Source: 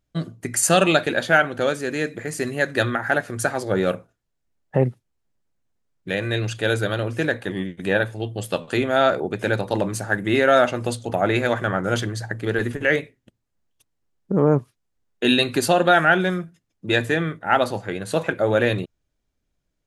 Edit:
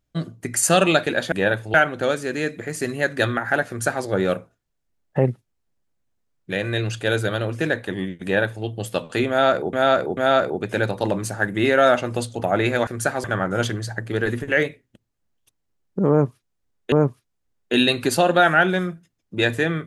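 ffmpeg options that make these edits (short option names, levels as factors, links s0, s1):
-filter_complex "[0:a]asplit=8[s0][s1][s2][s3][s4][s5][s6][s7];[s0]atrim=end=1.322[s8];[s1]atrim=start=7.808:end=8.232[s9];[s2]atrim=start=1.318:end=9.312[s10];[s3]atrim=start=8.868:end=9.312[s11];[s4]atrim=start=8.868:end=11.572[s12];[s5]atrim=start=3.258:end=3.632[s13];[s6]atrim=start=11.568:end=15.252[s14];[s7]atrim=start=14.428[s15];[s8][s9]acrossfade=d=0.004:c1=hsin:c2=hsin[s16];[s16][s10]acrossfade=d=0.004:c1=hsin:c2=hsin[s17];[s17][s11]acrossfade=d=0.004:c1=hsin:c2=hsin[s18];[s18][s12]acrossfade=d=0.004:c1=hsin:c2=hsin[s19];[s19][s13]acrossfade=d=0.004:c1=hsin:c2=hsin[s20];[s20][s14]acrossfade=d=0.004:c1=hsin:c2=hsin[s21];[s21][s15]acrossfade=d=0.004:c1=hsin:c2=hsin"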